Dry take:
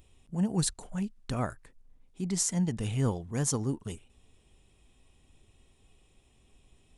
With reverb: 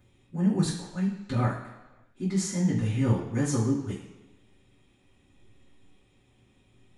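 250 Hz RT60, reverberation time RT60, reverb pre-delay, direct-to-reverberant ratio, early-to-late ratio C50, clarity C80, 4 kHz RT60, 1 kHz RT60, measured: 1.0 s, 1.1 s, 3 ms, -15.0 dB, 4.5 dB, 7.5 dB, 1.2 s, 1.1 s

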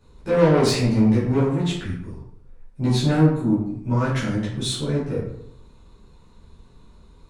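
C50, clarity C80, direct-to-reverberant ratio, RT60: 3.0 dB, 6.0 dB, -11.0 dB, 0.70 s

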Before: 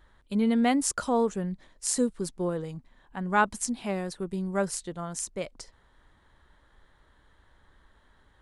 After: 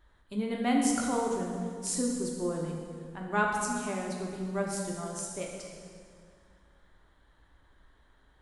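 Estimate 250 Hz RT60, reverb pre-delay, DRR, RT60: 2.6 s, 3 ms, -1.0 dB, 2.1 s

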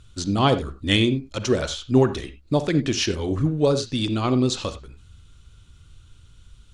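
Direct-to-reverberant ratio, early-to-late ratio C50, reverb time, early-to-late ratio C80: 11.0 dB, 12.5 dB, not exponential, 16.5 dB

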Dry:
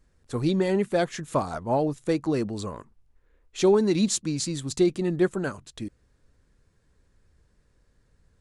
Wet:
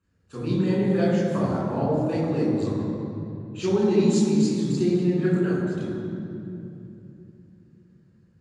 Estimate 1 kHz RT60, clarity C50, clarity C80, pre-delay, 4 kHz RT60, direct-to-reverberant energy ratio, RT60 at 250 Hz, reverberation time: 2.6 s, -1.5 dB, 0.5 dB, 3 ms, 1.7 s, -6.5 dB, 4.4 s, 2.9 s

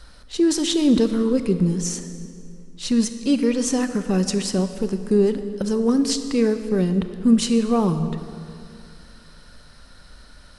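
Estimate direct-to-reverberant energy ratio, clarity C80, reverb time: 9.0 dB, 10.5 dB, 2.4 s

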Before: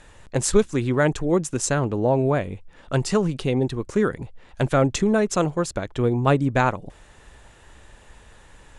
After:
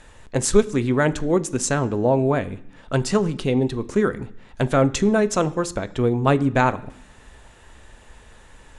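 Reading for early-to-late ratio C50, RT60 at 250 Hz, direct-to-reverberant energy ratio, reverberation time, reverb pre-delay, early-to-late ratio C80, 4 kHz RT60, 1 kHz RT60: 19.5 dB, 0.95 s, 12.0 dB, 0.65 s, 3 ms, 22.0 dB, 0.85 s, 0.70 s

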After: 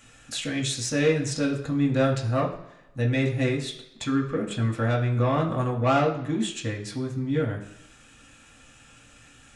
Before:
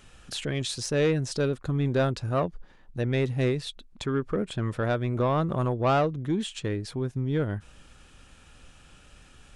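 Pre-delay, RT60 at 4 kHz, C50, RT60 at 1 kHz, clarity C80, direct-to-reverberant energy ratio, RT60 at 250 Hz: 3 ms, 0.85 s, 9.0 dB, 0.85 s, 12.0 dB, -2.0 dB, 0.80 s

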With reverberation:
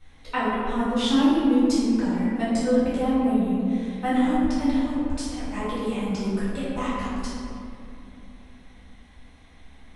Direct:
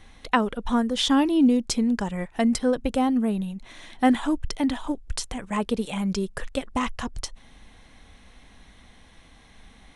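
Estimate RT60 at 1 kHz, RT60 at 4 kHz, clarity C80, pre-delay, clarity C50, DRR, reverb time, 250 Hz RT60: 2.4 s, 1.3 s, -1.0 dB, 4 ms, -3.0 dB, -11.0 dB, 2.7 s, 3.8 s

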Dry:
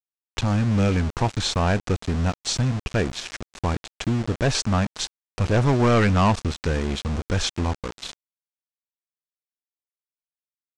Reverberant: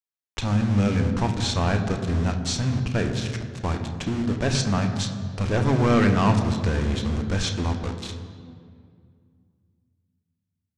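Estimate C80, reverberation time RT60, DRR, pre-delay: 8.5 dB, 2.2 s, 5.0 dB, 3 ms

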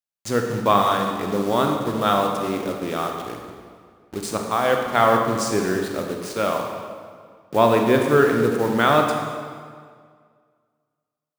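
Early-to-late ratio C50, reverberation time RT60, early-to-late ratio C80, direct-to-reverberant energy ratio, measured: 3.5 dB, 1.9 s, 5.0 dB, 2.0 dB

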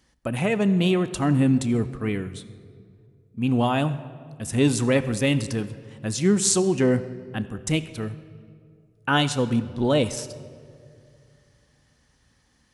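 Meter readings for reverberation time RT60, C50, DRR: 2.3 s, 14.0 dB, 12.0 dB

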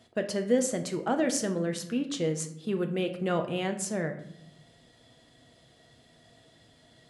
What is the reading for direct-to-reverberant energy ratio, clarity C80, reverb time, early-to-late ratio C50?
5.5 dB, 14.0 dB, 0.70 s, 11.0 dB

